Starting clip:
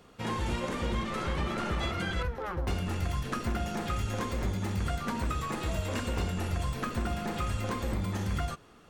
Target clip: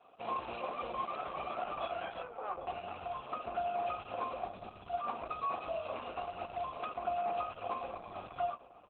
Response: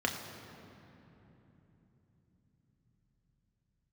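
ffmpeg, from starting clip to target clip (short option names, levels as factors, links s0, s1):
-filter_complex "[0:a]asplit=3[s0][s1][s2];[s0]afade=t=out:st=2.05:d=0.02[s3];[s1]highpass=67,afade=t=in:st=2.05:d=0.02,afade=t=out:st=2.5:d=0.02[s4];[s2]afade=t=in:st=2.5:d=0.02[s5];[s3][s4][s5]amix=inputs=3:normalize=0,asettb=1/sr,asplit=3[s6][s7][s8];[s6]atrim=end=4.534[s9];[s7]atrim=start=4.53:end=4.93,asetpts=PTS-STARTPTS,afade=t=in:d=0.004:c=qsin,afade=t=out:st=0.396:d=0.004:c=qsin,acrossover=split=400|3000[s10][s11][s12];[s11]acompressor=threshold=0.00355:ratio=3[s13];[s10][s13][s12]amix=inputs=3:normalize=0[s14];[s8]atrim=start=4.926[s15];[s9][s14]acrossfade=d=0.004:c1=hsin:c2=qsin[s16];[s16][s15]acrossfade=d=0.004:c1=qsin:c2=hsin,adynamicequalizer=threshold=0.00282:dfrequency=190:dqfactor=2.4:tfrequency=190:tqfactor=2.4:attack=5:release=100:ratio=0.375:range=2:mode=cutabove:tftype=bell,asplit=3[s17][s18][s19];[s17]bandpass=f=730:t=q:w=8,volume=1[s20];[s18]bandpass=f=1090:t=q:w=8,volume=0.501[s21];[s19]bandpass=f=2440:t=q:w=8,volume=0.355[s22];[s20][s21][s22]amix=inputs=3:normalize=0,asplit=3[s23][s24][s25];[s23]afade=t=out:st=6.02:d=0.02[s26];[s24]asoftclip=type=hard:threshold=0.01,afade=t=in:st=6.02:d=0.02,afade=t=out:st=7.05:d=0.02[s27];[s25]afade=t=in:st=7.05:d=0.02[s28];[s26][s27][s28]amix=inputs=3:normalize=0,asplit=2[s29][s30];[s30]adelay=781,lowpass=f=1800:p=1,volume=0.178,asplit=2[s31][s32];[s32]adelay=781,lowpass=f=1800:p=1,volume=0.23[s33];[s29][s31][s33]amix=inputs=3:normalize=0,volume=2.82" -ar 48000 -c:a libopus -b:a 8k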